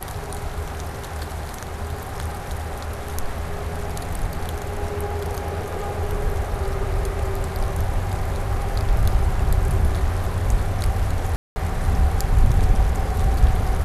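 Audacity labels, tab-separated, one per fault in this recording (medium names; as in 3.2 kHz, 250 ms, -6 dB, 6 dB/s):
11.360000	11.560000	dropout 200 ms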